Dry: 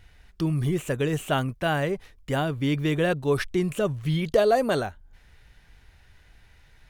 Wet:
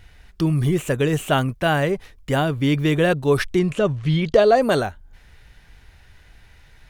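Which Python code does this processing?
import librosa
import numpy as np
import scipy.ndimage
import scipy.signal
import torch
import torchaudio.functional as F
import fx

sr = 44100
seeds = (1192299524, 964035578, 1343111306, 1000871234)

y = fx.lowpass(x, sr, hz=5800.0, slope=12, at=(3.59, 4.62))
y = F.gain(torch.from_numpy(y), 5.5).numpy()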